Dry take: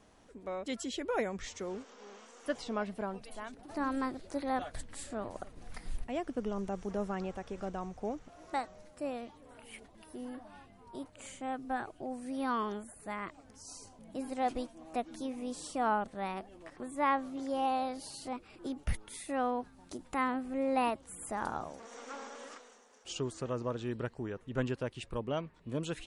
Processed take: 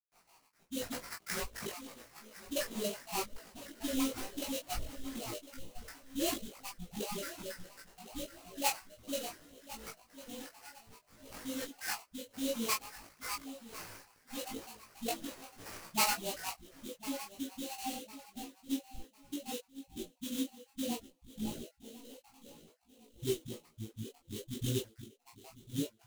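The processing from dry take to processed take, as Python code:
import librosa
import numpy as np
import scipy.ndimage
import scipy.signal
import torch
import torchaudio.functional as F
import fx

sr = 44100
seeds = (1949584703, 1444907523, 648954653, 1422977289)

y = fx.spec_dropout(x, sr, seeds[0], share_pct=73)
y = fx.peak_eq(y, sr, hz=5400.0, db=-9.5, octaves=2.5, at=(4.79, 7.27))
y = fx.dispersion(y, sr, late='highs', ms=124.0, hz=470.0)
y = fx.filter_sweep_lowpass(y, sr, from_hz=8000.0, to_hz=340.0, start_s=16.2, end_s=16.77, q=0.93)
y = fx.echo_feedback(y, sr, ms=1053, feedback_pct=31, wet_db=-16.0)
y = fx.sample_hold(y, sr, seeds[1], rate_hz=3500.0, jitter_pct=20)
y = fx.high_shelf(y, sr, hz=3400.0, db=11.0)
y = fx.doubler(y, sr, ms=18.0, db=-2.5)
y = fx.detune_double(y, sr, cents=21)
y = y * librosa.db_to_amplitude(4.5)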